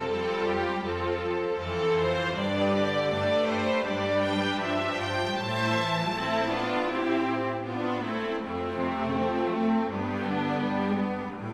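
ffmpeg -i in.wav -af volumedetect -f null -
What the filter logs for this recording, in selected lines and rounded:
mean_volume: -27.6 dB
max_volume: -13.8 dB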